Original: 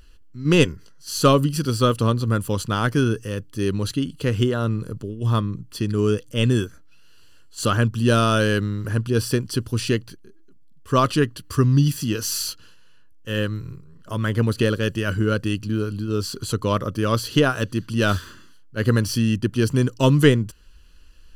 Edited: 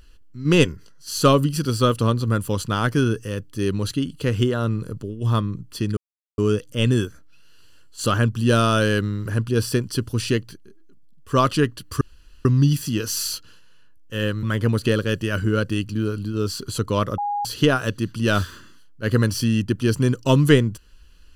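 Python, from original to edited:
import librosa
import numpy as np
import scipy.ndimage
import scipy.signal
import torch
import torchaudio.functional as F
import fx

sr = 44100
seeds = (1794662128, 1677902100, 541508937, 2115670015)

y = fx.edit(x, sr, fx.insert_silence(at_s=5.97, length_s=0.41),
    fx.insert_room_tone(at_s=11.6, length_s=0.44),
    fx.cut(start_s=13.58, length_s=0.59),
    fx.bleep(start_s=16.92, length_s=0.27, hz=821.0, db=-21.5), tone=tone)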